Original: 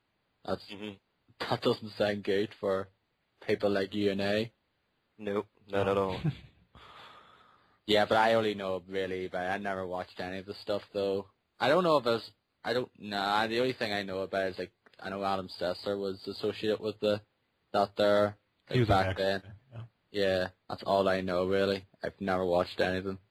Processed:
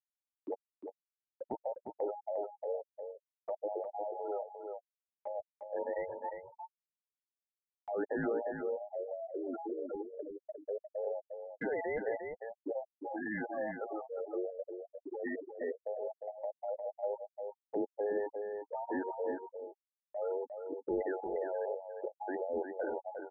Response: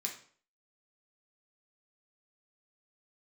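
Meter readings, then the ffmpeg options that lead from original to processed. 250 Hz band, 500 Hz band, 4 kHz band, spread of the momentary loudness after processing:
−8.0 dB, −6.5 dB, below −40 dB, 11 LU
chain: -filter_complex "[0:a]afftfilt=real='real(if(between(b,1,1008),(2*floor((b-1)/48)+1)*48-b,b),0)':imag='imag(if(between(b,1,1008),(2*floor((b-1)/48)+1)*48-b,b),0)*if(between(b,1,1008),-1,1)':win_size=2048:overlap=0.75,agate=range=-16dB:threshold=-59dB:ratio=16:detection=peak,afwtdn=0.0224,afftfilt=real='re*gte(hypot(re,im),0.0794)':imag='im*gte(hypot(re,im),0.0794)':win_size=1024:overlap=0.75,acrossover=split=280 5100:gain=0.141 1 0.158[link_01][link_02][link_03];[link_01][link_02][link_03]amix=inputs=3:normalize=0,acompressor=mode=upward:threshold=-34dB:ratio=2.5,alimiter=limit=-21dB:level=0:latency=1:release=13,acrossover=split=440|3000[link_04][link_05][link_06];[link_05]acompressor=threshold=-41dB:ratio=5[link_07];[link_04][link_07][link_06]amix=inputs=3:normalize=0,asplit=2[link_08][link_09];[link_09]aecho=0:1:354|364:0.473|0.106[link_10];[link_08][link_10]amix=inputs=2:normalize=0,volume=-1dB"

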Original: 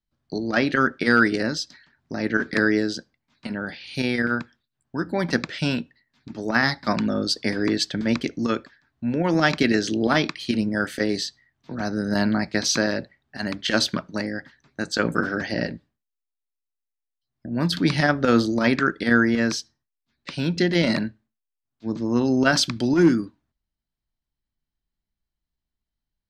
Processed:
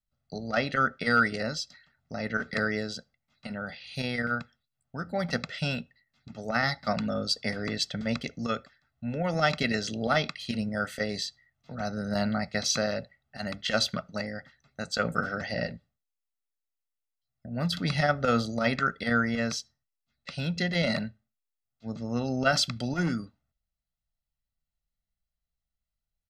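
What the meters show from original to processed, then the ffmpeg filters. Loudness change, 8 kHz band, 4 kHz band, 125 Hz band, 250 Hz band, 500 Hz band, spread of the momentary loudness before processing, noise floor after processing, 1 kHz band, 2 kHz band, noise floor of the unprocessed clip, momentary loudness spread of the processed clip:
−6.5 dB, −5.0 dB, −4.5 dB, −4.5 dB, −9.5 dB, −6.0 dB, 14 LU, below −85 dBFS, −3.0 dB, −6.0 dB, −84 dBFS, 14 LU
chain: -af "aecho=1:1:1.5:0.77,volume=-7dB"

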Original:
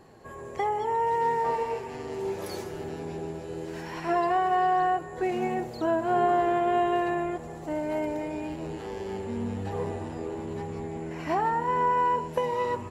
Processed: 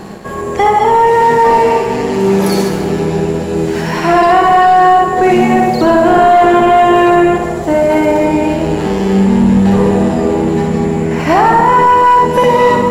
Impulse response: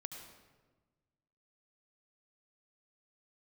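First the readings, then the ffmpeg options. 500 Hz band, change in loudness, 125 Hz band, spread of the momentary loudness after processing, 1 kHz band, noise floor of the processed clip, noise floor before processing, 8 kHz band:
+18.5 dB, +18.5 dB, +21.0 dB, 8 LU, +17.5 dB, −18 dBFS, −41 dBFS, can't be measured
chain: -filter_complex "[0:a]equalizer=frequency=200:width=6.1:gain=13,asplit=2[link_01][link_02];[1:a]atrim=start_sample=2205,adelay=61[link_03];[link_02][link_03]afir=irnorm=-1:irlink=0,volume=1dB[link_04];[link_01][link_04]amix=inputs=2:normalize=0,apsyclip=22dB,areverse,acompressor=mode=upward:threshold=-14dB:ratio=2.5,areverse,equalizer=frequency=93:width=7.2:gain=-13.5,aeval=exprs='sgn(val(0))*max(abs(val(0))-0.0178,0)':channel_layout=same,volume=-3dB"

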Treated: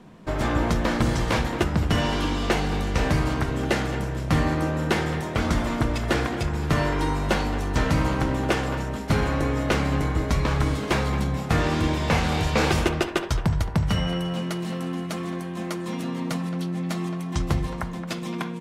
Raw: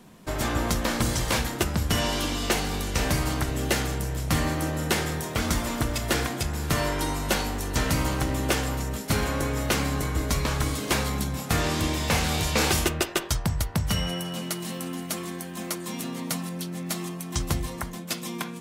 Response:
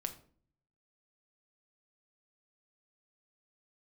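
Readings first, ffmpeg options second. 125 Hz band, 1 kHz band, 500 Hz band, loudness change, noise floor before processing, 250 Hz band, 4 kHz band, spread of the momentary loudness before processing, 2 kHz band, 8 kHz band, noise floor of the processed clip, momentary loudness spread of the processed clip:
+3.5 dB, +3.0 dB, +3.5 dB, +2.0 dB, −37 dBFS, +4.0 dB, −2.5 dB, 8 LU, +1.5 dB, −8.5 dB, −32 dBFS, 7 LU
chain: -filter_complex "[0:a]aemphasis=mode=reproduction:type=75fm,asplit=2[link_01][link_02];[link_02]adelay=220,highpass=300,lowpass=3400,asoftclip=type=hard:threshold=-21dB,volume=-11dB[link_03];[link_01][link_03]amix=inputs=2:normalize=0,asplit=2[link_04][link_05];[1:a]atrim=start_sample=2205,asetrate=37485,aresample=44100[link_06];[link_05][link_06]afir=irnorm=-1:irlink=0,volume=-8.5dB[link_07];[link_04][link_07]amix=inputs=2:normalize=0"

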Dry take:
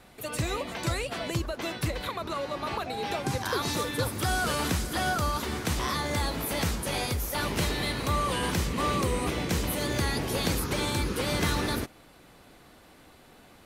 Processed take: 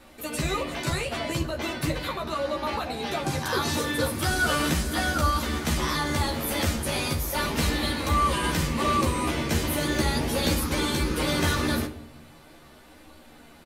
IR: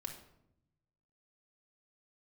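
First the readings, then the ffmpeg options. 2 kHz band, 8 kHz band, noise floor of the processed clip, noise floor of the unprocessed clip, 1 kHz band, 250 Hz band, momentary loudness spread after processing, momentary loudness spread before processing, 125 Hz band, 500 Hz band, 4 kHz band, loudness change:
+4.0 dB, +2.5 dB, −51 dBFS, −55 dBFS, +3.0 dB, +4.0 dB, 6 LU, 5 LU, +2.5 dB, +2.5 dB, +3.0 dB, +3.0 dB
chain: -filter_complex "[0:a]flanger=delay=3.6:depth=5.5:regen=-47:speed=0.38:shape=sinusoidal,asplit=2[link_01][link_02];[link_02]adelay=13,volume=-2.5dB[link_03];[link_01][link_03]amix=inputs=2:normalize=0,asplit=2[link_04][link_05];[1:a]atrim=start_sample=2205,asetrate=43659,aresample=44100[link_06];[link_05][link_06]afir=irnorm=-1:irlink=0,volume=1.5dB[link_07];[link_04][link_07]amix=inputs=2:normalize=0"

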